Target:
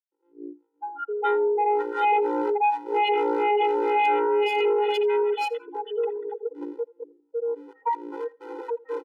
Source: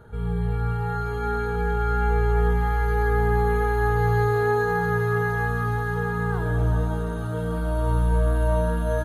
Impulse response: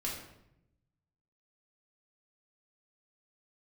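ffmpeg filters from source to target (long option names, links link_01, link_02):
-filter_complex "[0:a]lowpass=frequency=2600:width=0.5412,lowpass=frequency=2600:width=1.3066,bandreject=frequency=128.9:width_type=h:width=4,bandreject=frequency=257.8:width_type=h:width=4,bandreject=frequency=386.7:width_type=h:width=4,bandreject=frequency=515.6:width_type=h:width=4,afftfilt=real='re*gte(hypot(re,im),0.251)':imag='im*gte(hypot(re,im),0.251)':win_size=1024:overlap=0.75,aecho=1:1:2.3:0.46,asplit=2[link_01][link_02];[link_02]highpass=frequency=720:poles=1,volume=13dB,asoftclip=type=tanh:threshold=-8.5dB[link_03];[link_01][link_03]amix=inputs=2:normalize=0,lowpass=frequency=1000:poles=1,volume=-6dB,acontrast=33,acrossover=split=470[link_04][link_05];[link_04]aeval=exprs='val(0)*(1-1/2+1/2*cos(2*PI*2.1*n/s))':channel_layout=same[link_06];[link_05]aeval=exprs='val(0)*(1-1/2-1/2*cos(2*PI*2.1*n/s))':channel_layout=same[link_07];[link_06][link_07]amix=inputs=2:normalize=0,aresample=8000,aeval=exprs='0.355*sin(PI/2*3.16*val(0)/0.355)':channel_layout=same,aresample=44100,asubboost=boost=3.5:cutoff=54,volume=7dB,asoftclip=hard,volume=-7dB,aecho=1:1:83|166:0.0708|0.012,afftfilt=real='re*eq(mod(floor(b*sr/1024/260),2),1)':imag='im*eq(mod(floor(b*sr/1024/260),2),1)':win_size=1024:overlap=0.75,volume=-8dB"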